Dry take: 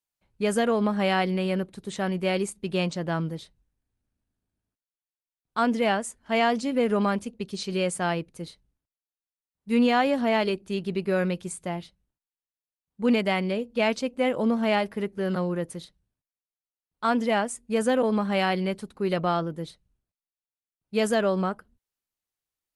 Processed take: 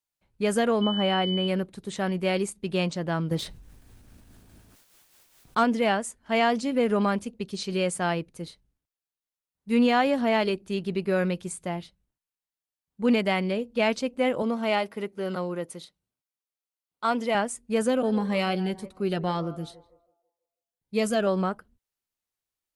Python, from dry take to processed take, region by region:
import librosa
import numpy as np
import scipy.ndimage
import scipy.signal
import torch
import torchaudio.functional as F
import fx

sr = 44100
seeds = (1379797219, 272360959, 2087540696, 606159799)

y = fx.high_shelf(x, sr, hz=2300.0, db=-11.0, at=(0.81, 1.47), fade=0.02)
y = fx.dmg_tone(y, sr, hz=3000.0, level_db=-30.0, at=(0.81, 1.47), fade=0.02)
y = fx.chain(y, sr, fx.tremolo(hz=4.8, depth=0.51),
    fx.leveller(passes=1),
    fx.env_flatten(amount_pct=50), at=(3.31, 5.64))
y = fx.chain(y, sr, fx.highpass(hz=320.0, slope=6),
    fx.notch(hz=1700.0, q=8.7), at=(14.42, 17.35))
y = fx.chain(y, sr, fx.echo_banded(ms=163, feedback_pct=41, hz=640.0, wet_db=-15.0),
    fx.notch_cascade(direction='rising', hz=1.9), at=(17.87, 21.27))